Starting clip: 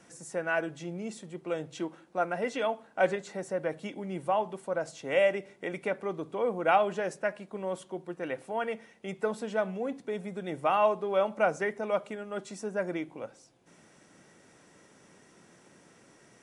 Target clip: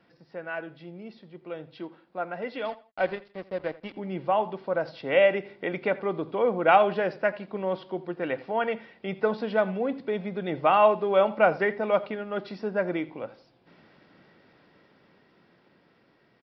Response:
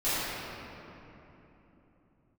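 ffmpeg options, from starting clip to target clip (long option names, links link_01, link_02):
-filter_complex "[0:a]dynaudnorm=framelen=800:gausssize=9:maxgain=14dB,asettb=1/sr,asplit=3[link_01][link_02][link_03];[link_01]atrim=end=2.654[link_04];[link_02]atrim=start=2.65:end=3.97,asetpts=PTS-STARTPTS,afade=type=in:duration=0.004:curve=qsin,afade=type=out:start_time=1.316:duration=0.004:curve=qsin,aeval=exprs='sgn(val(0))*max(abs(val(0))-0.015,0)':channel_layout=same[link_05];[link_03]atrim=start=3.966[link_06];[link_04][link_05]acrossfade=duration=0.004:curve1=hsin:curve2=qsin[link_07];[link_07][link_06]acrossfade=duration=0.004:curve1=qsin:curve2=hsin,asplit=2[link_08][link_09];[link_09]aecho=0:1:84|168:0.112|0.0325[link_10];[link_08][link_10]amix=inputs=2:normalize=0,aresample=11025,aresample=44100,volume=-5dB"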